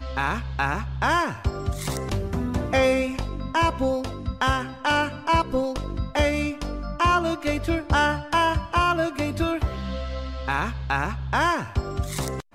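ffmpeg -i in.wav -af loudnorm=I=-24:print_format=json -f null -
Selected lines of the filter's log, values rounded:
"input_i" : "-25.2",
"input_tp" : "-10.2",
"input_lra" : "3.8",
"input_thresh" : "-35.2",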